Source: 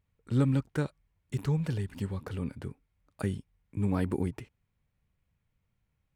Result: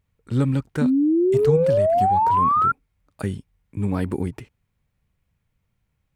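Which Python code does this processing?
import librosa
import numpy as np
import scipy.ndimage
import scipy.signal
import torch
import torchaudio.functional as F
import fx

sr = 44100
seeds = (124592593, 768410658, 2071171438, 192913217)

y = fx.spec_paint(x, sr, seeds[0], shape='rise', start_s=0.81, length_s=1.91, low_hz=240.0, high_hz=1400.0, level_db=-23.0)
y = fx.transient(y, sr, attack_db=7, sustain_db=-9, at=(1.34, 2.65))
y = y * librosa.db_to_amplitude(5.0)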